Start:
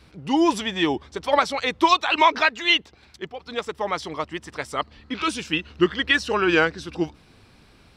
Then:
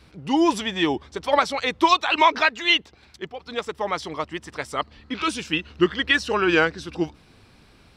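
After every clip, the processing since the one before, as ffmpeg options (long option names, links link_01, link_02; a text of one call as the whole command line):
ffmpeg -i in.wav -af anull out.wav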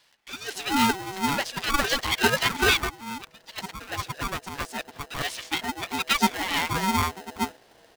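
ffmpeg -i in.wav -filter_complex "[0:a]acrossover=split=1200[link_01][link_02];[link_01]adelay=410[link_03];[link_03][link_02]amix=inputs=2:normalize=0,aeval=exprs='val(0)*sgn(sin(2*PI*570*n/s))':channel_layout=same,volume=-3dB" out.wav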